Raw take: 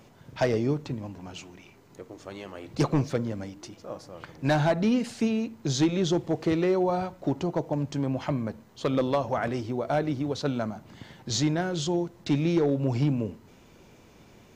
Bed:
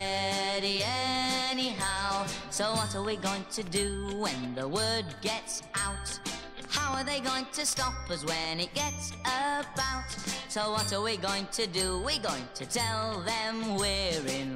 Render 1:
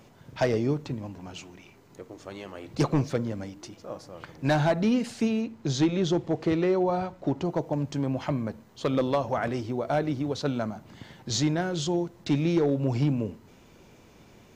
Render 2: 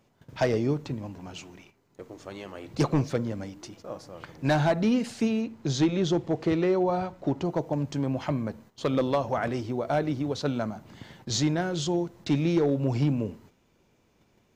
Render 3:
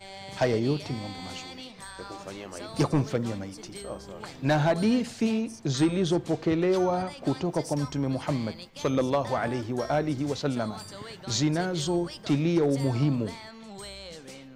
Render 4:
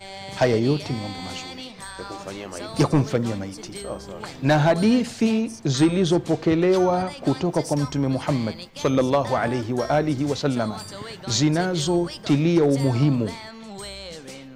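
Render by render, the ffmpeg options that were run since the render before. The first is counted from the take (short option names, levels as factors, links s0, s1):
-filter_complex "[0:a]asettb=1/sr,asplit=3[s0][s1][s2];[s0]atrim=end=5.414[s3];[s1]atrim=start=5.41:end=7.45,asetpts=PTS-STARTPTS,afade=t=in:d=0.004:c=qsin,afade=t=out:st=2.036:d=0.004:c=qsin,highshelf=f=8000:g=-10[s4];[s2]atrim=start=7.446[s5];[s3][s4]acrossfade=d=0.004:c1=hsin:c2=qsin[s6];[s6][s5]acrossfade=d=0.004:c1=qsin:c2=hsin"
-af "agate=range=0.251:threshold=0.00316:ratio=16:detection=peak"
-filter_complex "[1:a]volume=0.251[s0];[0:a][s0]amix=inputs=2:normalize=0"
-af "volume=1.88"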